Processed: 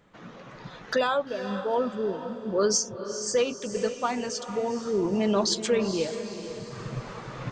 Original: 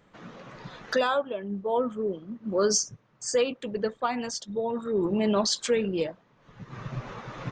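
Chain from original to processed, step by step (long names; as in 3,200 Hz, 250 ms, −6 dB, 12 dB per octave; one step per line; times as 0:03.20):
feedback delay with all-pass diffusion 463 ms, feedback 47%, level −10 dB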